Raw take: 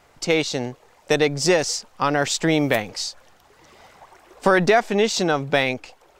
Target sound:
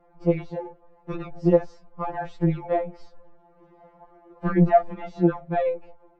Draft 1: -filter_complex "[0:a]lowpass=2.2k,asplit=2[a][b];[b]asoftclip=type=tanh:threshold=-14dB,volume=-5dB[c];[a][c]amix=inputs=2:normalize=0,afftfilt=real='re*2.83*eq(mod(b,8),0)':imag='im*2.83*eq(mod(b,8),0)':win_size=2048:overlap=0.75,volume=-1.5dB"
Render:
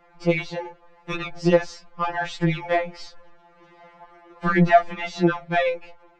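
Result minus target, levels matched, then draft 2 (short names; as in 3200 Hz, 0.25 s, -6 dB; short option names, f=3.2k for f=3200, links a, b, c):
2000 Hz band +12.0 dB
-filter_complex "[0:a]lowpass=740,asplit=2[a][b];[b]asoftclip=type=tanh:threshold=-14dB,volume=-5dB[c];[a][c]amix=inputs=2:normalize=0,afftfilt=real='re*2.83*eq(mod(b,8),0)':imag='im*2.83*eq(mod(b,8),0)':win_size=2048:overlap=0.75,volume=-1.5dB"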